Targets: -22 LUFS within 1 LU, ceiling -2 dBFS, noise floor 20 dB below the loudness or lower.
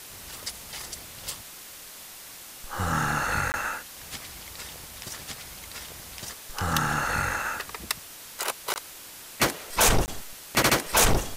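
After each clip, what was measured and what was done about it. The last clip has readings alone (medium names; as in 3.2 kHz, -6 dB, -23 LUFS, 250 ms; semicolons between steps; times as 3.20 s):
dropouts 3; longest dropout 19 ms; noise floor -44 dBFS; noise floor target -48 dBFS; loudness -27.5 LUFS; peak level -10.0 dBFS; loudness target -22.0 LUFS
-> interpolate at 3.52/8.74/10.06 s, 19 ms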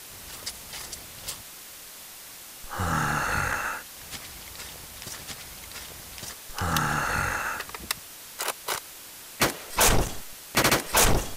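dropouts 0; noise floor -44 dBFS; noise floor target -48 dBFS
-> noise reduction 6 dB, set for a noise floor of -44 dBFS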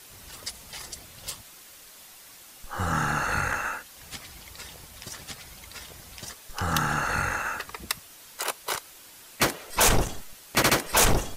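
noise floor -49 dBFS; loudness -27.0 LUFS; peak level -10.0 dBFS; loudness target -22.0 LUFS
-> trim +5 dB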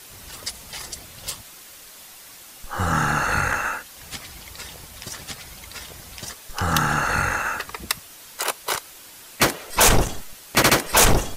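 loudness -22.0 LUFS; peak level -5.0 dBFS; noise floor -44 dBFS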